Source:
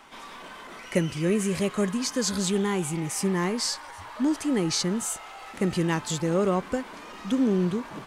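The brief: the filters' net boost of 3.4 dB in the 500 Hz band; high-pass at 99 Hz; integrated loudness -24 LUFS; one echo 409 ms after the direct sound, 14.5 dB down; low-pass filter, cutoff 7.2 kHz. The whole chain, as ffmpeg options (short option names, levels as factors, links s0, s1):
-af "highpass=99,lowpass=7200,equalizer=f=500:t=o:g=4.5,aecho=1:1:409:0.188,volume=1.19"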